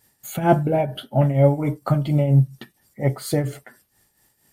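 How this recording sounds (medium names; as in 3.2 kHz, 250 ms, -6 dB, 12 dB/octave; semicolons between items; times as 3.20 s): tremolo triangle 4.3 Hz, depth 70%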